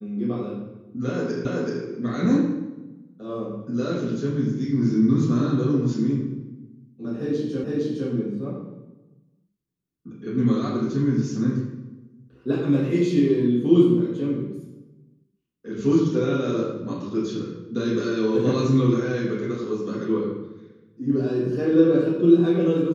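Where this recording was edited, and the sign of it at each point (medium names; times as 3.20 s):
1.45 s: repeat of the last 0.38 s
7.64 s: repeat of the last 0.46 s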